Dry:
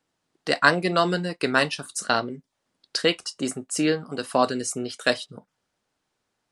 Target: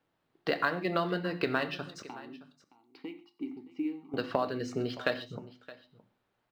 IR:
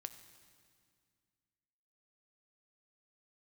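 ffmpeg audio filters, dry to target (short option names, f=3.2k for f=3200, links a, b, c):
-filter_complex "[0:a]lowpass=f=4.2k:w=0.5412,lowpass=f=4.2k:w=1.3066,highshelf=f=2.7k:g=-5,bandreject=f=50:t=h:w=6,bandreject=f=100:t=h:w=6,bandreject=f=150:t=h:w=6,bandreject=f=200:t=h:w=6,bandreject=f=250:t=h:w=6,bandreject=f=300:t=h:w=6,bandreject=f=350:t=h:w=6,acompressor=threshold=-27dB:ratio=6,asettb=1/sr,asplit=3[a][b][c];[a]atrim=end=2.024[d];[b]atrim=start=2.02:end=4.14,asetpts=PTS-STARTPTS,afade=t=in:d=0.004:c=qsin,afade=t=out:st=2.116:d=0.004:c=qsin,asplit=3[e][f][g];[e]bandpass=f=300:t=q:w=8,volume=0dB[h];[f]bandpass=f=870:t=q:w=8,volume=-6dB[i];[g]bandpass=f=2.24k:t=q:w=8,volume=-9dB[j];[h][i][j]amix=inputs=3:normalize=0[k];[c]atrim=start=4.136[l];[d][k]acrossfade=d=0.004:c1=hsin:c2=qsin[m];[m][l]acrossfade=d=0.004:c1=qsin:c2=hsin,aecho=1:1:619:0.119[n];[1:a]atrim=start_sample=2205,atrim=end_sample=6174[o];[n][o]afir=irnorm=-1:irlink=0,volume=5.5dB" -ar 44100 -c:a adpcm_ima_wav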